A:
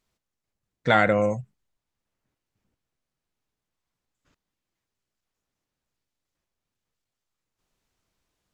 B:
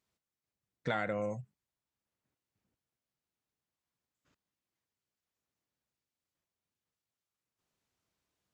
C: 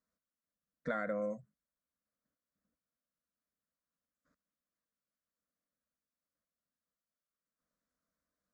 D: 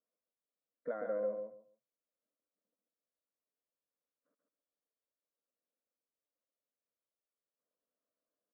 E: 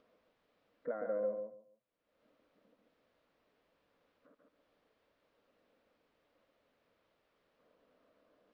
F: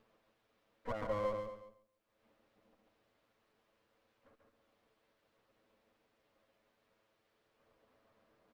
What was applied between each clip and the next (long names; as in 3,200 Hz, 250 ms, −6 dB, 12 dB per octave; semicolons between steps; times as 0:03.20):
high-pass filter 71 Hz; downward compressor 3 to 1, threshold −26 dBFS, peak gain reduction 9.5 dB; level −6.5 dB
high-shelf EQ 3,800 Hz −9.5 dB; phaser with its sweep stopped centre 560 Hz, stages 8
four-pole ladder band-pass 510 Hz, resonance 35%; on a send: repeating echo 139 ms, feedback 20%, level −5 dB; on the sum: level +9 dB
upward compression, threshold −50 dBFS; high-frequency loss of the air 340 metres; level +1 dB
lower of the sound and its delayed copy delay 9.1 ms; single-tap delay 226 ms −14 dB; level +1 dB